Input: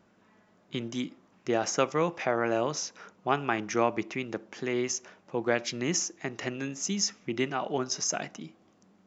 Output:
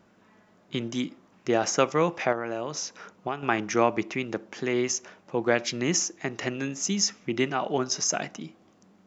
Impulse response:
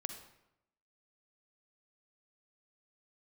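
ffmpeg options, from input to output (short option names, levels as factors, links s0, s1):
-filter_complex "[0:a]asettb=1/sr,asplit=3[s0][s1][s2];[s0]atrim=end=2.324[s3];[s1]atrim=start=2.32:end=3.43,asetpts=PTS-STARTPTS,afade=t=in:d=0.004:c=qsin,afade=t=out:st=1.106:d=0.004:c=qsin,acompressor=threshold=0.0282:ratio=5[s4];[s2]atrim=start=3.426[s5];[s3][s4]acrossfade=d=0.004:c1=hsin:c2=qsin[s6];[s6][s5]acrossfade=d=0.004:c1=qsin:c2=hsin,volume=1.5"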